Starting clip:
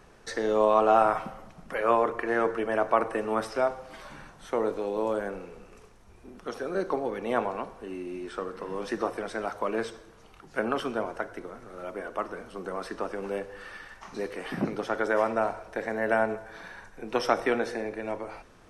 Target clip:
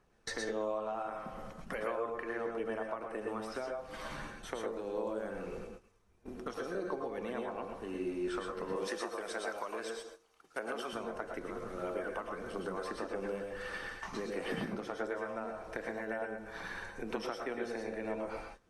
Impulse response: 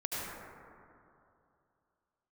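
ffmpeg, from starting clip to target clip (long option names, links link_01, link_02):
-filter_complex "[0:a]agate=range=-18dB:threshold=-47dB:ratio=16:detection=peak,asettb=1/sr,asplit=3[link_01][link_02][link_03];[link_01]atrim=end=8.764[link_04];[link_02]atrim=start=8.76:end=10.93,asetpts=PTS-STARTPTS,afade=type=in:duration=0.004:curve=qsin,afade=type=out:start_time=2.166:duration=0.004:curve=qsin,bass=frequency=250:gain=-15,treble=frequency=4000:gain=6[link_05];[link_03]atrim=start=10.926[link_06];[link_04][link_05]acrossfade=duration=0.004:curve1=hsin:curve2=qsin[link_07];[link_07][link_06]acrossfade=duration=0.004:curve1=qsin:curve2=hsin,acompressor=threshold=-37dB:ratio=10,aphaser=in_gain=1:out_gain=1:delay=1.1:decay=0.22:speed=1.6:type=triangular[link_08];[1:a]atrim=start_sample=2205,atrim=end_sample=3969,asetrate=29988,aresample=44100[link_09];[link_08][link_09]afir=irnorm=-1:irlink=0,volume=1dB"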